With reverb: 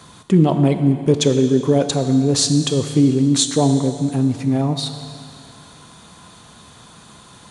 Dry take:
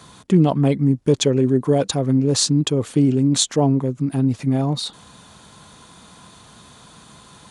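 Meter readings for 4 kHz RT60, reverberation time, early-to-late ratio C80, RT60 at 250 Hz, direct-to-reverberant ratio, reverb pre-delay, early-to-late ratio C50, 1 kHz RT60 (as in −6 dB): 2.4 s, 2.4 s, 9.5 dB, 2.4 s, 7.5 dB, 8 ms, 8.5 dB, 2.4 s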